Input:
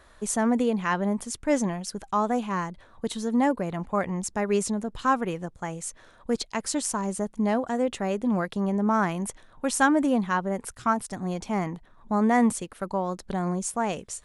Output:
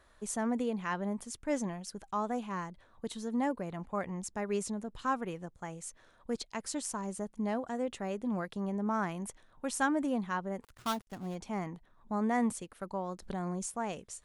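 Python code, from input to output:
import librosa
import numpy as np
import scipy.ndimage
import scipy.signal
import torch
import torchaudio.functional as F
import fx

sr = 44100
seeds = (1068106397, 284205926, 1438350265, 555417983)

y = fx.dead_time(x, sr, dead_ms=0.15, at=(10.62, 11.34), fade=0.02)
y = fx.env_flatten(y, sr, amount_pct=50, at=(13.22, 13.66))
y = y * 10.0 ** (-9.0 / 20.0)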